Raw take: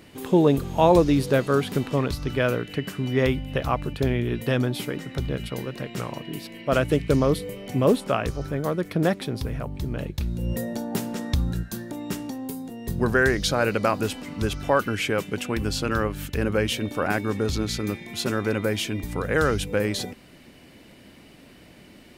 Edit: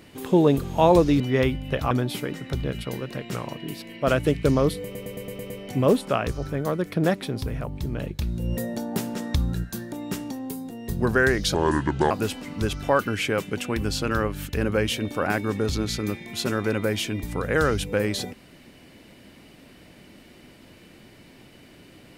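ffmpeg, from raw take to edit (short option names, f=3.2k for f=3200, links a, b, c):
-filter_complex "[0:a]asplit=11[a][b][c][d][e][f][g][h][i][j][k];[a]atrim=end=1.202[l];[b]atrim=start=3.028:end=3.742[m];[c]atrim=start=4.558:end=7.602[n];[d]atrim=start=7.488:end=7.602[o];[e]atrim=start=7.488:end=7.602[p];[f]atrim=start=7.488:end=7.602[q];[g]atrim=start=7.488:end=7.602[r];[h]atrim=start=7.488:end=7.602[s];[i]atrim=start=7.488:end=13.534[t];[j]atrim=start=13.53:end=13.91,asetpts=PTS-STARTPTS,asetrate=29547,aresample=44100[u];[k]atrim=start=13.906[v];[l][m]acrossfade=d=0.004:c1=hsin:c2=hsin[w];[w][n]acrossfade=d=0.004:c1=hsin:c2=hsin[x];[x][o]acrossfade=d=0.004:c1=hsin:c2=hsin[y];[y][p]acrossfade=d=0.004:c1=hsin:c2=hsin[z];[z][q]acrossfade=d=0.004:c1=hsin:c2=hsin[aa];[aa][r]acrossfade=d=0.004:c1=hsin:c2=hsin[ab];[ab][s]acrossfade=d=0.004:c1=hsin:c2=hsin[ac];[ac][t]acrossfade=d=0.004:c1=hsin:c2=hsin[ad];[ad][u]acrossfade=d=0.004:c1=hsin:c2=hsin[ae];[ae][v]acrossfade=d=0.004:c1=hsin:c2=hsin"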